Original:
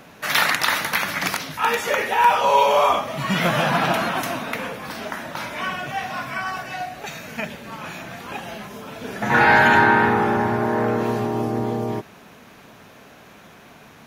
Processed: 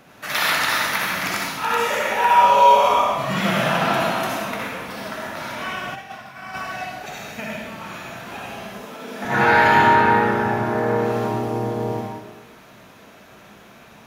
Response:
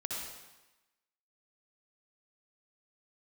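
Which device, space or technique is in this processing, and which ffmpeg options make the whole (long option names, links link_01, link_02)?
bathroom: -filter_complex "[0:a]asettb=1/sr,asplit=3[link_01][link_02][link_03];[link_01]atrim=end=8.694[link_04];[link_02]atrim=start=8.69:end=9.25,asetpts=PTS-STARTPTS,afade=type=in:duration=0.004:curve=qsin,afade=type=out:start_time=0.556:duration=0.004:curve=qsin,highpass=frequency=190:width=0.5412,highpass=frequency=190:width=1.3066[link_05];[link_03]atrim=start=9.246[link_06];[link_04][link_05]acrossfade=duration=0.004:curve1=hsin:curve2=qsin[link_07];[link_07][link_06]acrossfade=duration=0.004:curve1=qsin:curve2=hsin[link_08];[1:a]atrim=start_sample=2205[link_09];[link_08][link_09]afir=irnorm=-1:irlink=0,asplit=3[link_10][link_11][link_12];[link_10]afade=type=out:start_time=5.94:duration=0.02[link_13];[link_11]agate=range=-33dB:threshold=-19dB:ratio=3:detection=peak,afade=type=in:start_time=5.94:duration=0.02,afade=type=out:start_time=6.53:duration=0.02[link_14];[link_12]afade=type=in:start_time=6.53:duration=0.02[link_15];[link_13][link_14][link_15]amix=inputs=3:normalize=0,volume=-2dB"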